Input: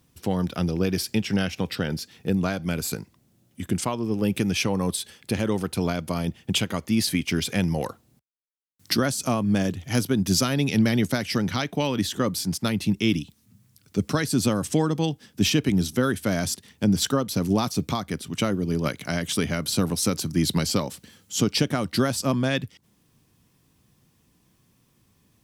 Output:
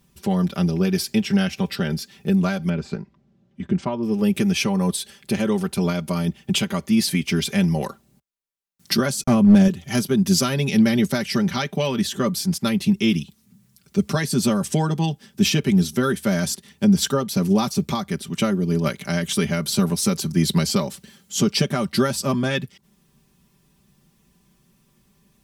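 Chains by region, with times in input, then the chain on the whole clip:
2.69–4.03 Bessel low-pass 4400 Hz, order 4 + high shelf 2600 Hz -10.5 dB
9.23–9.68 gate -32 dBFS, range -57 dB + low shelf 320 Hz +8.5 dB + hard clip -12 dBFS
whole clip: low shelf 110 Hz +4.5 dB; comb 5.1 ms, depth 79%

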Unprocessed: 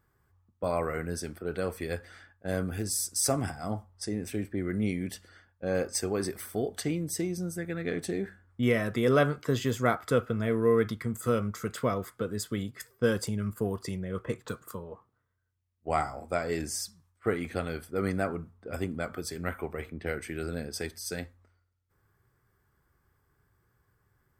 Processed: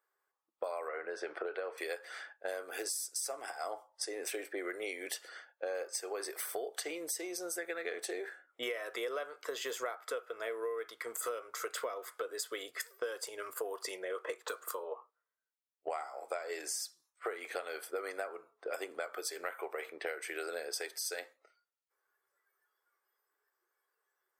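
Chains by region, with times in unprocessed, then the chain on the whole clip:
0.88–1.78 BPF 110–2400 Hz + three-band squash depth 100%
whole clip: inverse Chebyshev high-pass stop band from 220 Hz, stop band 40 dB; spectral noise reduction 15 dB; compressor 16:1, threshold -42 dBFS; gain +7 dB

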